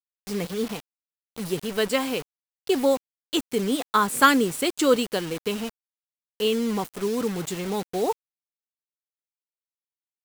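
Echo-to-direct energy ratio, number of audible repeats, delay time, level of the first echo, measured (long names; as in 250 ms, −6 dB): no echo audible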